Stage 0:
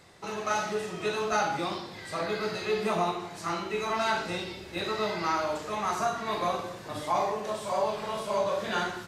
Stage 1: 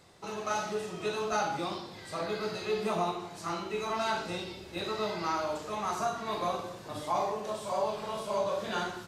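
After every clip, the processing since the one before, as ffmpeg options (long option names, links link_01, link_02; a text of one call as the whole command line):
ffmpeg -i in.wav -af "equalizer=frequency=1900:width_type=o:width=0.73:gain=-4.5,volume=-2.5dB" out.wav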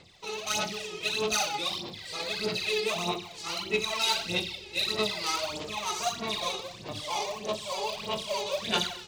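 ffmpeg -i in.wav -af "adynamicsmooth=sensitivity=5:basefreq=2800,aphaser=in_gain=1:out_gain=1:delay=2.4:decay=0.68:speed=1.6:type=sinusoidal,aexciter=amount=8.1:drive=4.3:freq=2200,volume=-4.5dB" out.wav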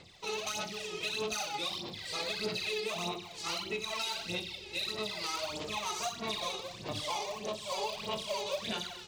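ffmpeg -i in.wav -af "alimiter=level_in=1dB:limit=-24dB:level=0:latency=1:release=388,volume=-1dB" out.wav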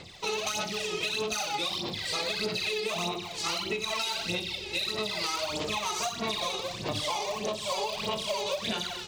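ffmpeg -i in.wav -af "acompressor=threshold=-36dB:ratio=6,volume=8.5dB" out.wav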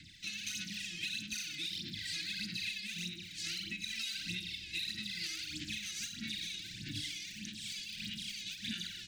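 ffmpeg -i in.wav -af "asuperstop=centerf=700:order=20:qfactor=0.58,volume=-7dB" out.wav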